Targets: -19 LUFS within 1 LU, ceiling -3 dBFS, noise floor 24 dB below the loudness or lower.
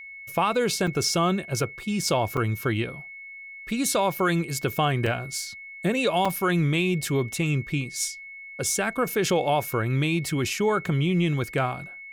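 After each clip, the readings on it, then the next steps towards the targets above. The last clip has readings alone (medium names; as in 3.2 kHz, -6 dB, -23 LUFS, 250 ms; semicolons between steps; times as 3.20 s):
dropouts 4; longest dropout 4.5 ms; steady tone 2.2 kHz; tone level -39 dBFS; loudness -25.5 LUFS; peak level -10.0 dBFS; loudness target -19.0 LUFS
-> interpolate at 0.87/2.37/5.06/6.25 s, 4.5 ms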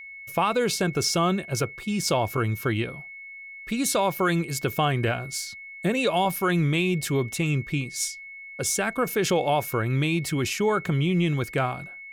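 dropouts 0; steady tone 2.2 kHz; tone level -39 dBFS
-> band-stop 2.2 kHz, Q 30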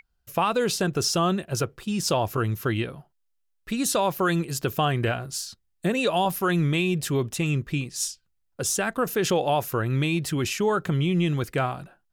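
steady tone not found; loudness -25.5 LUFS; peak level -10.0 dBFS; loudness target -19.0 LUFS
-> trim +6.5 dB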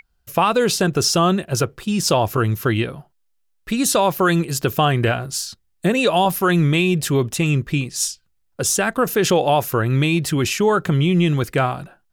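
loudness -19.0 LUFS; peak level -3.5 dBFS; noise floor -65 dBFS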